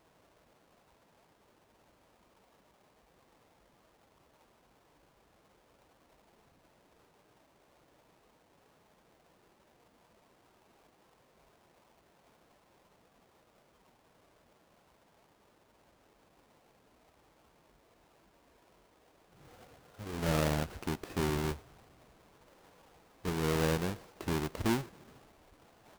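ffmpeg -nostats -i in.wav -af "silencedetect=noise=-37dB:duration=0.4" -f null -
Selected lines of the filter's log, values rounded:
silence_start: 0.00
silence_end: 20.09 | silence_duration: 20.09
silence_start: 21.53
silence_end: 23.25 | silence_duration: 1.72
silence_start: 24.81
silence_end: 25.98 | silence_duration: 1.17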